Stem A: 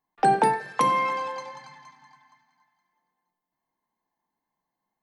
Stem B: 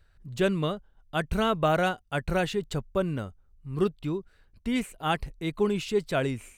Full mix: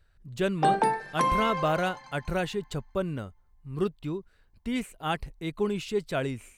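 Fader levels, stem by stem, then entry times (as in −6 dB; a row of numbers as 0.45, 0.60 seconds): −3.5, −2.5 decibels; 0.40, 0.00 seconds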